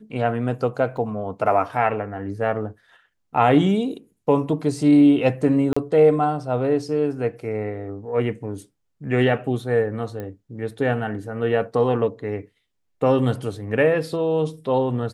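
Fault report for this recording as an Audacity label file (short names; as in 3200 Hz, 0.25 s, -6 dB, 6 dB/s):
0.970000	0.970000	gap 2.1 ms
5.730000	5.760000	gap 35 ms
10.200000	10.200000	pop -20 dBFS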